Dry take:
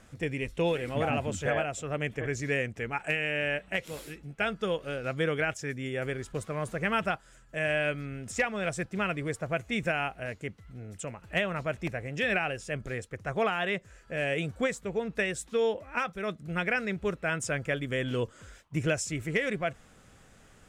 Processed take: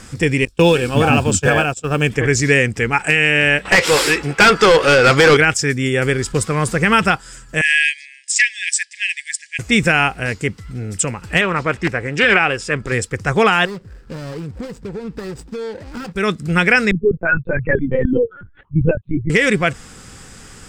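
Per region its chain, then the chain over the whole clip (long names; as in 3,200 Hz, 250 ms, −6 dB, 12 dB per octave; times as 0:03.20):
0:00.45–0:02.10: Butterworth band-reject 2,000 Hz, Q 5.4 + log-companded quantiser 8 bits + noise gate −37 dBFS, range −23 dB
0:03.65–0:05.37: parametric band 200 Hz −10.5 dB 1.2 octaves + mid-hump overdrive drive 28 dB, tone 1,500 Hz, clips at −15 dBFS
0:07.61–0:09.59: linear-phase brick-wall band-pass 1,600–10,000 Hz + multiband upward and downward expander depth 70%
0:11.41–0:12.92: bass and treble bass −6 dB, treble −8 dB + highs frequency-modulated by the lows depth 0.21 ms
0:13.65–0:16.16: running median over 41 samples + high-shelf EQ 8,200 Hz −6 dB + downward compressor, threshold −41 dBFS
0:16.91–0:19.30: expanding power law on the bin magnitudes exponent 2.8 + high-pass filter 130 Hz + linear-prediction vocoder at 8 kHz pitch kept
whole clip: thirty-one-band graphic EQ 630 Hz −11 dB, 5,000 Hz +9 dB, 8,000 Hz +8 dB; boost into a limiter +18 dB; level −1 dB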